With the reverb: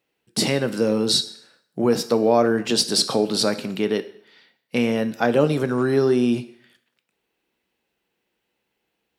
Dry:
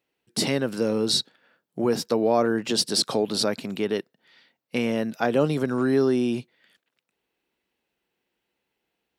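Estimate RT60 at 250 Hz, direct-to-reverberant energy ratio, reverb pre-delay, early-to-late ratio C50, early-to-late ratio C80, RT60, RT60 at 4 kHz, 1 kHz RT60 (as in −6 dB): 0.60 s, 10.0 dB, 3 ms, 15.0 dB, 18.0 dB, 0.65 s, 0.60 s, 0.70 s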